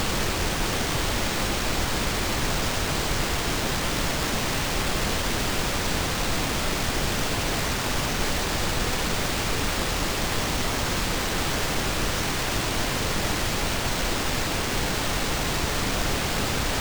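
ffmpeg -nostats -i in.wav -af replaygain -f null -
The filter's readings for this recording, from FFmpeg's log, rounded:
track_gain = +10.2 dB
track_peak = 0.169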